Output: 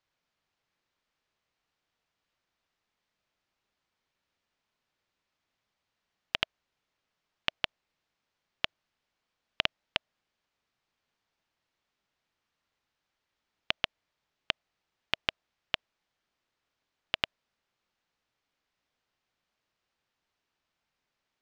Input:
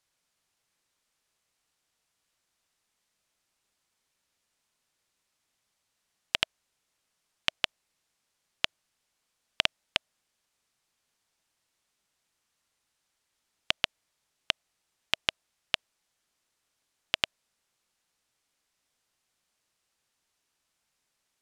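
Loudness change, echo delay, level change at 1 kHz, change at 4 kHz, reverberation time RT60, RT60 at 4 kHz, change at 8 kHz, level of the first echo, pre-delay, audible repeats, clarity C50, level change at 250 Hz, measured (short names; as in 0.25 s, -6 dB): -3.0 dB, none, -1.0 dB, -3.5 dB, none, none, -11.5 dB, none, none, none, none, 0.0 dB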